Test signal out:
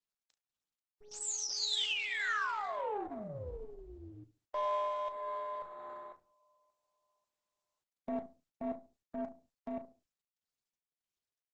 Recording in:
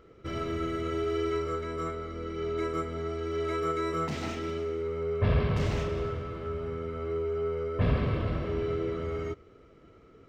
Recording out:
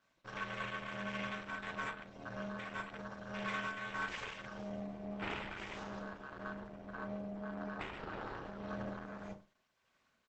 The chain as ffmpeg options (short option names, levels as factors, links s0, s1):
-filter_complex "[0:a]lowpass=6900,bandreject=f=510:w=12,afwtdn=0.0126,aderivative,asplit=2[s0][s1];[s1]acompressor=threshold=0.00158:ratio=6,volume=0.794[s2];[s0][s2]amix=inputs=2:normalize=0,alimiter=level_in=6.68:limit=0.0631:level=0:latency=1:release=481,volume=0.15,aeval=exprs='val(0)*sin(2*PI*210*n/s)':c=same,asplit=2[s3][s4];[s4]adelay=70,lowpass=f=1100:p=1,volume=0.2,asplit=2[s5][s6];[s6]adelay=70,lowpass=f=1100:p=1,volume=0.25,asplit=2[s7][s8];[s8]adelay=70,lowpass=f=1100:p=1,volume=0.25[s9];[s3][s5][s7][s9]amix=inputs=4:normalize=0,aeval=exprs='0.01*(cos(1*acos(clip(val(0)/0.01,-1,1)))-cos(1*PI/2))+0.000562*(cos(6*acos(clip(val(0)/0.01,-1,1)))-cos(6*PI/2))':c=same,asplit=2[s10][s11];[s11]adelay=36,volume=0.299[s12];[s10][s12]amix=inputs=2:normalize=0,tremolo=f=1.7:d=0.37,volume=5.62" -ar 48000 -c:a libopus -b:a 12k